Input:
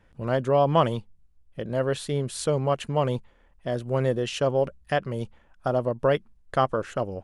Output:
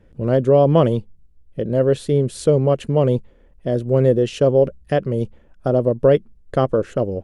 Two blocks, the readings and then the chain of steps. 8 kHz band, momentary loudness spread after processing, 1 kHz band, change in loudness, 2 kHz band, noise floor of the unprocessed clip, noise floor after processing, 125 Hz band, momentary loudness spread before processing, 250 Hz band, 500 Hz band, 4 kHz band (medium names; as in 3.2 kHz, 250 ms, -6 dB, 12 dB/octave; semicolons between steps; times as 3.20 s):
0.0 dB, 10 LU, 0.0 dB, +8.0 dB, -1.0 dB, -60 dBFS, -51 dBFS, +9.0 dB, 12 LU, +9.5 dB, +8.5 dB, -0.5 dB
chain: resonant low shelf 650 Hz +8.5 dB, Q 1.5